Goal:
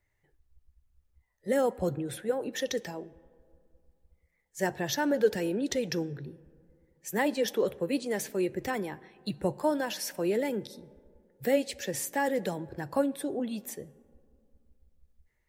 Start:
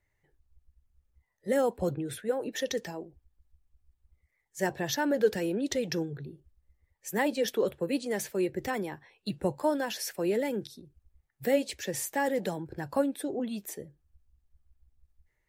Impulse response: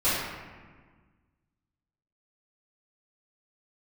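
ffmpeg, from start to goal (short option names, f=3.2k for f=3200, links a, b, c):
-filter_complex "[0:a]asplit=2[a][b];[1:a]atrim=start_sample=2205,asetrate=26460,aresample=44100[c];[b][c]afir=irnorm=-1:irlink=0,volume=-37.5dB[d];[a][d]amix=inputs=2:normalize=0"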